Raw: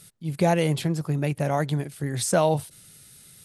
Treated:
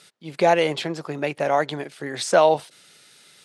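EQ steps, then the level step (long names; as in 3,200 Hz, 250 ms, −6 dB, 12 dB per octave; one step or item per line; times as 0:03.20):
band-pass filter 410–4,900 Hz
+6.5 dB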